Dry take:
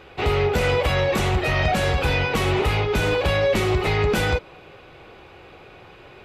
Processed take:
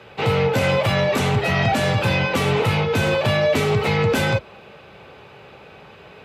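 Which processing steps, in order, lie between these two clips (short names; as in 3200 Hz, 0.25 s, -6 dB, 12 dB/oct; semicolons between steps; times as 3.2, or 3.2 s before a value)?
frequency shift +47 Hz; gain +1.5 dB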